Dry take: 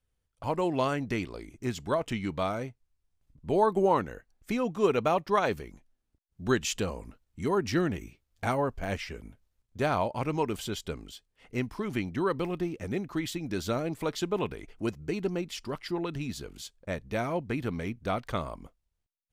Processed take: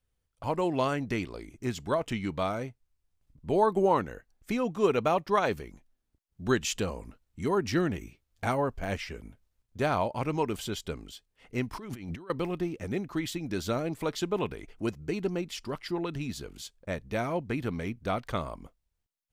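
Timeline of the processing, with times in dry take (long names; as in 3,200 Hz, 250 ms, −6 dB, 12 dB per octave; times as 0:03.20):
0:11.73–0:12.30: compressor whose output falls as the input rises −41 dBFS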